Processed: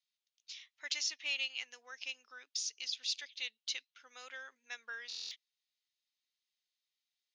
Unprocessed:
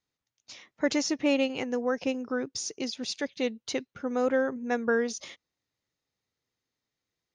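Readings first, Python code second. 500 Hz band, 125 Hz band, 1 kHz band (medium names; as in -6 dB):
-33.0 dB, under -40 dB, -20.5 dB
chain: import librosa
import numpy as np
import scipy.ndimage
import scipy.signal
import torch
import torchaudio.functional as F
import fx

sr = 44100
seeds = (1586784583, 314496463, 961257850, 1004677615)

y = fx.ladder_bandpass(x, sr, hz=4000.0, resonance_pct=30)
y = fx.buffer_glitch(y, sr, at_s=(5.08,), block=1024, repeats=9)
y = y * 10.0 ** (9.5 / 20.0)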